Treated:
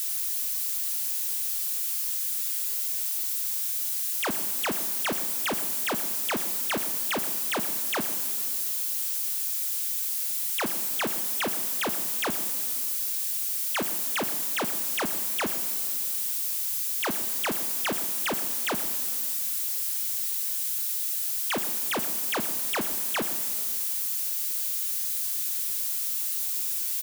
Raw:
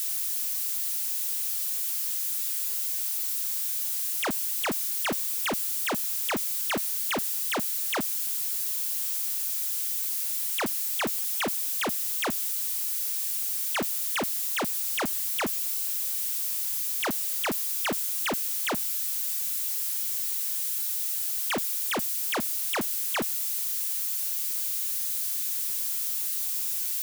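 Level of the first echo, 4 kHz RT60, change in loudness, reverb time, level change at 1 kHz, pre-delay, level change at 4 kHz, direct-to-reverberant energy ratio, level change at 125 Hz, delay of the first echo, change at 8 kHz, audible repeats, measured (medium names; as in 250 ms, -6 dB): -15.5 dB, 2.4 s, +0.5 dB, 2.6 s, +0.5 dB, 6 ms, +0.5 dB, 9.5 dB, -0.5 dB, 114 ms, +0.5 dB, 1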